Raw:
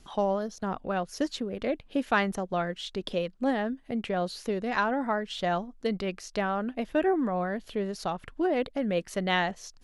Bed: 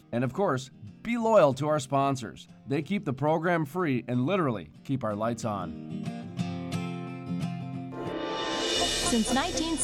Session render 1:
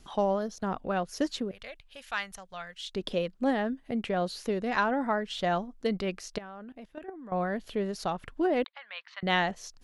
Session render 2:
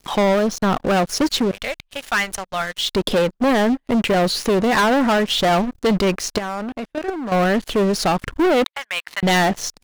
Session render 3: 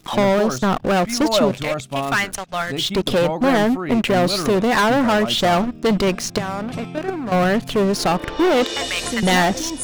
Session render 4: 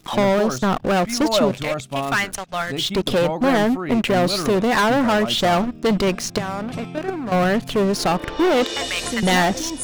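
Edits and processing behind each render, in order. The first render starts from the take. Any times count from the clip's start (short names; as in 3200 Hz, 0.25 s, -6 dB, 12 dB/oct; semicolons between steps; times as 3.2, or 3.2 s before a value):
1.51–2.95 passive tone stack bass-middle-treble 10-0-10; 6.38–7.32 level quantiser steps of 22 dB; 8.64–9.23 elliptic band-pass 950–4100 Hz, stop band 50 dB
sample leveller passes 5
add bed +1 dB
gain -1 dB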